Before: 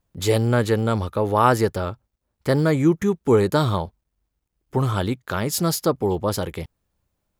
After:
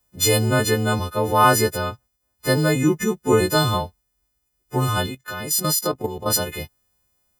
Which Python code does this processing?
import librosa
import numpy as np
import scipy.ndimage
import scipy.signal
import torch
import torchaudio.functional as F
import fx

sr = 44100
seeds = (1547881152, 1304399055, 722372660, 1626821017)

y = fx.freq_snap(x, sr, grid_st=3)
y = fx.level_steps(y, sr, step_db=10, at=(5.06, 6.3))